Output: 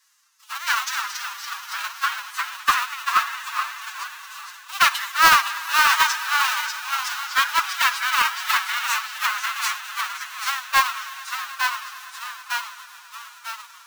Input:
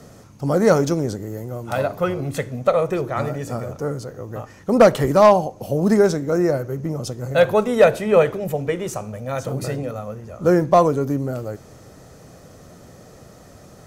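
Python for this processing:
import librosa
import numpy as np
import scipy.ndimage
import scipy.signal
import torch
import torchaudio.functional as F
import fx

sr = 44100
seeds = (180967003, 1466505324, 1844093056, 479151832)

p1 = fx.diode_clip(x, sr, knee_db=-21.0)
p2 = fx.echo_pitch(p1, sr, ms=228, semitones=-1, count=3, db_per_echo=-3.0)
p3 = fx.sample_hold(p2, sr, seeds[0], rate_hz=3400.0, jitter_pct=20)
p4 = p2 + (p3 * 10.0 ** (-6.0 / 20.0))
p5 = fx.dynamic_eq(p4, sr, hz=9300.0, q=0.94, threshold_db=-44.0, ratio=4.0, max_db=-6)
p6 = p5 + fx.echo_swell(p5, sr, ms=108, loudest=5, wet_db=-17.0, dry=0)
p7 = fx.pitch_keep_formants(p6, sr, semitones=7.5)
p8 = scipy.signal.sosfilt(scipy.signal.butter(8, 1100.0, 'highpass', fs=sr, output='sos'), p7)
p9 = np.clip(10.0 ** (18.0 / 20.0) * p8, -1.0, 1.0) / 10.0 ** (18.0 / 20.0)
p10 = fx.band_widen(p9, sr, depth_pct=70)
y = p10 * 10.0 ** (6.5 / 20.0)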